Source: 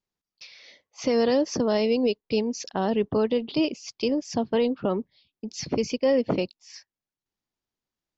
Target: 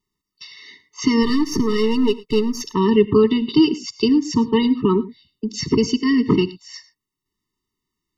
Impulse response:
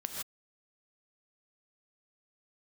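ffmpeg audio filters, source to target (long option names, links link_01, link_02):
-filter_complex "[0:a]asplit=3[link_01][link_02][link_03];[link_01]afade=type=out:start_time=1.22:duration=0.02[link_04];[link_02]aeval=exprs='if(lt(val(0),0),0.447*val(0),val(0))':channel_layout=same,afade=type=in:start_time=1.22:duration=0.02,afade=type=out:start_time=2.61:duration=0.02[link_05];[link_03]afade=type=in:start_time=2.61:duration=0.02[link_06];[link_04][link_05][link_06]amix=inputs=3:normalize=0,asplit=2[link_07][link_08];[1:a]atrim=start_sample=2205,atrim=end_sample=6174,asetrate=52920,aresample=44100[link_09];[link_08][link_09]afir=irnorm=-1:irlink=0,volume=-8dB[link_10];[link_07][link_10]amix=inputs=2:normalize=0,afftfilt=real='re*eq(mod(floor(b*sr/1024/440),2),0)':imag='im*eq(mod(floor(b*sr/1024/440),2),0)':win_size=1024:overlap=0.75,volume=8.5dB"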